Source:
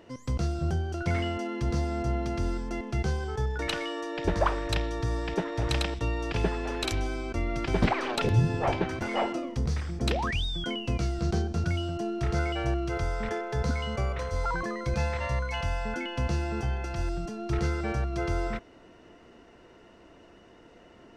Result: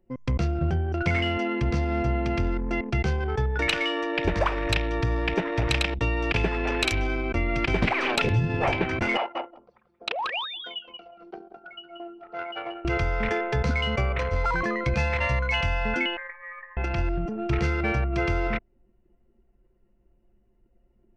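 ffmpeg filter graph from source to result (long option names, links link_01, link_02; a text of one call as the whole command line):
ffmpeg -i in.wav -filter_complex "[0:a]asettb=1/sr,asplit=3[link_01][link_02][link_03];[link_01]atrim=end=9.174[link_04];[link_02]atrim=start=9.17:end=12.85,asetpts=PTS-STARTPTS,afade=type=in:duration=0.004:curve=qsin,afade=type=out:start_time=3.676:duration=0.004:curve=qsin,highpass=760,lowpass=3400,equalizer=frequency=2000:width=1.4:gain=-10,aecho=1:1:181|362|543:0.562|0.146|0.038,atrim=end_sample=162288[link_05];[link_03]atrim=start=12.846[link_06];[link_04][link_05]acrossfade=duration=0.004:curve1=hsin:curve2=qsin[link_07];[link_07][link_06]acrossfade=duration=0.004:curve1=qsin:curve2=hsin,asettb=1/sr,asplit=3[link_08][link_09][link_10];[link_08]atrim=end=16.174[link_11];[link_09]atrim=start=16.17:end=16.77,asetpts=PTS-STARTPTS,afade=type=in:duration=0.004:curve=qsin,afade=type=out:start_time=0.596:duration=0.004:curve=qsin,highpass=910,lowpass=frequency=2200:width_type=q:width=0.5098,lowpass=frequency=2200:width_type=q:width=0.6013,lowpass=frequency=2200:width_type=q:width=0.9,lowpass=frequency=2200:width_type=q:width=2.563,afreqshift=-2600[link_12];[link_10]atrim=start=16.766[link_13];[link_11][link_12]acrossfade=duration=0.004:curve1=hsin:curve2=qsin[link_14];[link_14][link_13]acrossfade=duration=0.004:curve1=qsin:curve2=hsin,anlmdn=2.51,equalizer=frequency=2400:width=1.8:gain=9.5,acompressor=threshold=-28dB:ratio=3,volume=6.5dB" out.wav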